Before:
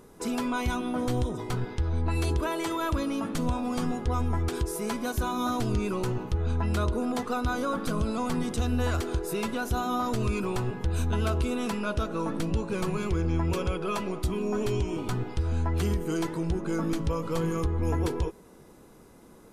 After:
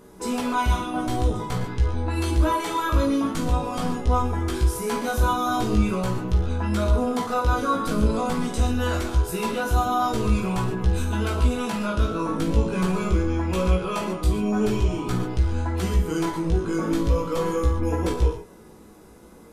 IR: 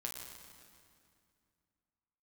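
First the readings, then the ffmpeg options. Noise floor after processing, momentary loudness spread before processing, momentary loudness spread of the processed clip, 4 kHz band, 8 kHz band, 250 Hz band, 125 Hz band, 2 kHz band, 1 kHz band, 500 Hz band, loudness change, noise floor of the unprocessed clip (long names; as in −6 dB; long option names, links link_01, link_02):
−47 dBFS, 3 LU, 4 LU, +4.5 dB, +4.0 dB, +4.5 dB, +5.0 dB, +4.5 dB, +7.0 dB, +4.5 dB, +5.0 dB, −53 dBFS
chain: -filter_complex "[0:a]flanger=delay=15.5:depth=3.4:speed=0.45[link_01];[1:a]atrim=start_sample=2205,atrim=end_sample=6615[link_02];[link_01][link_02]afir=irnorm=-1:irlink=0,volume=9dB"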